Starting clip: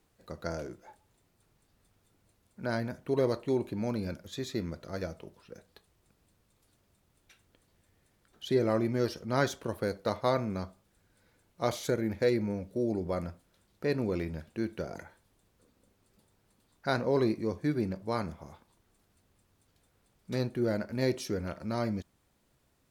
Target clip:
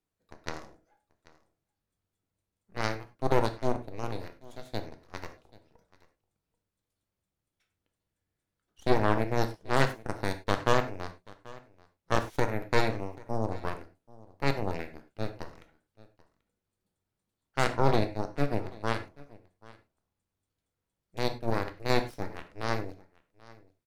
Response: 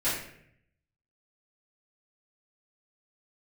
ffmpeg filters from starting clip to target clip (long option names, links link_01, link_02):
-filter_complex "[0:a]aeval=exprs='0.237*(cos(1*acos(clip(val(0)/0.237,-1,1)))-cos(1*PI/2))+0.00944*(cos(3*acos(clip(val(0)/0.237,-1,1)))-cos(3*PI/2))+0.075*(cos(4*acos(clip(val(0)/0.237,-1,1)))-cos(4*PI/2))+0.00422*(cos(5*acos(clip(val(0)/0.237,-1,1)))-cos(5*PI/2))+0.0376*(cos(7*acos(clip(val(0)/0.237,-1,1)))-cos(7*PI/2))':channel_layout=same,aecho=1:1:754:0.0794,asplit=2[link_01][link_02];[1:a]atrim=start_sample=2205,afade=type=out:start_time=0.15:duration=0.01,atrim=end_sample=7056,adelay=6[link_03];[link_02][link_03]afir=irnorm=-1:irlink=0,volume=-17dB[link_04];[link_01][link_04]amix=inputs=2:normalize=0,asetrate=42336,aresample=44100"